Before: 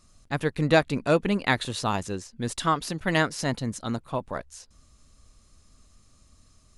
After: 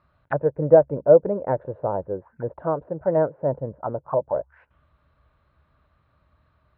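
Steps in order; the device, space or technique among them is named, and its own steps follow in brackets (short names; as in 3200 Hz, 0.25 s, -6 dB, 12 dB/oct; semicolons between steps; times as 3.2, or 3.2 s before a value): envelope filter bass rig (envelope low-pass 530–4500 Hz down, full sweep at -27.5 dBFS; speaker cabinet 66–2200 Hz, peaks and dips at 67 Hz +7 dB, 140 Hz +5 dB, 230 Hz -8 dB, 600 Hz +7 dB, 920 Hz +10 dB, 1500 Hz +10 dB); gain -4 dB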